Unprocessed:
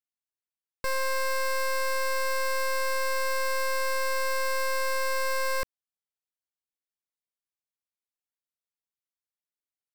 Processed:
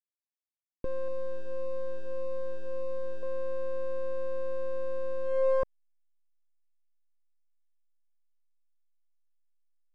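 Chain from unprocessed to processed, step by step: low-pass sweep 360 Hz -> 2400 Hz, 5.23–6.3; backlash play -46 dBFS; 1.08–3.23 cascading phaser falling 1.7 Hz; gain +1.5 dB

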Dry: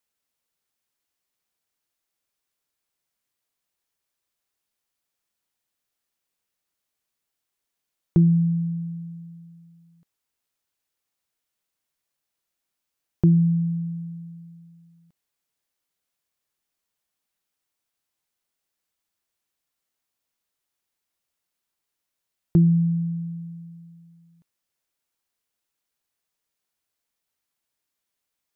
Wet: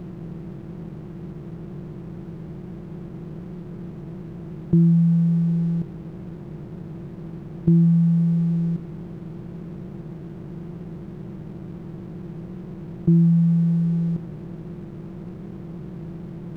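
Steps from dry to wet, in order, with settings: per-bin compression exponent 0.2; time stretch by phase-locked vocoder 0.58×; crossover distortion -48 dBFS

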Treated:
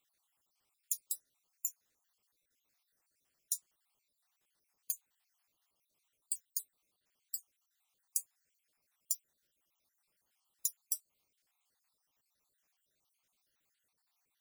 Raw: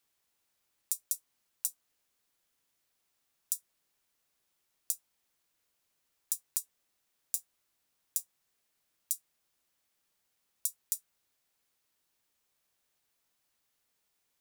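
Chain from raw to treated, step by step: random spectral dropouts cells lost 58%; dynamic EQ 6700 Hz, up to +4 dB, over -59 dBFS, Q 5.9; gain +1 dB

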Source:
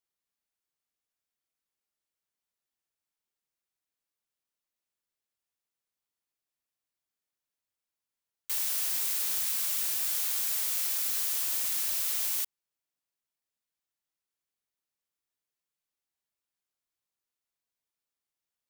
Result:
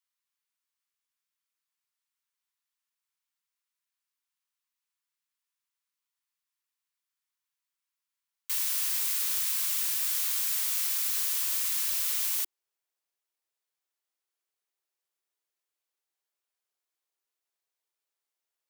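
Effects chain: elliptic high-pass 960 Hz, stop band 80 dB, from 12.37 s 350 Hz; gain +2 dB

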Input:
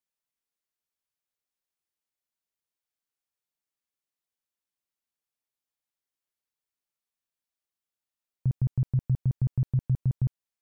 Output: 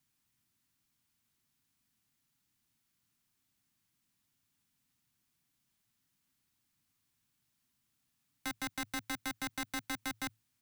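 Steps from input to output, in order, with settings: wrapped overs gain 33.5 dB; frequency shift -110 Hz; ten-band EQ 125 Hz +12 dB, 250 Hz +10 dB, 500 Hz -12 dB; limiter -38.5 dBFS, peak gain reduction 10.5 dB; gain +11 dB

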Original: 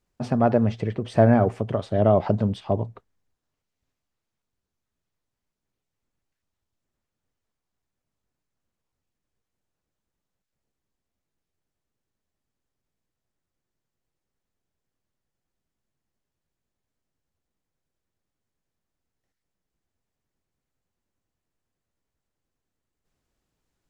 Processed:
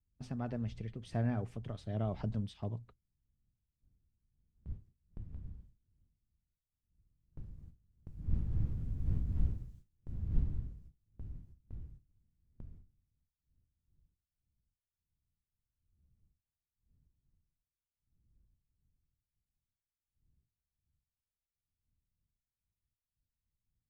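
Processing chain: wind noise 100 Hz -44 dBFS; Doppler pass-by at 9.21, 9 m/s, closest 5.1 m; bell 660 Hz -12.5 dB 2.7 oct; gate with hold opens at -50 dBFS; gain +12 dB

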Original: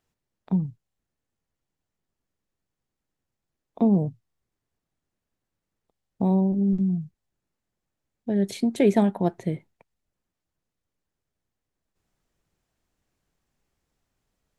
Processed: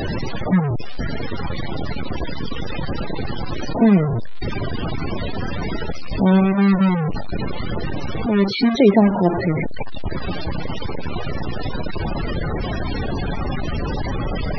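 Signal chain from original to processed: delta modulation 32 kbps, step -20.5 dBFS; loudest bins only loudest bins 32; gain +6.5 dB

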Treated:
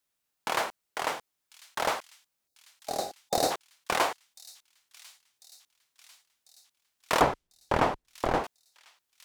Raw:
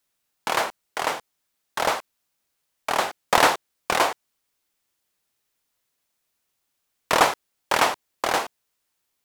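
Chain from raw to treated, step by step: 2.48–3.51 spectral gain 820–3600 Hz -16 dB; 7.21–8.44 tilt -4.5 dB/oct; on a send: thin delay 1.046 s, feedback 58%, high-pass 3800 Hz, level -15 dB; on the sum: gain -5.5 dB

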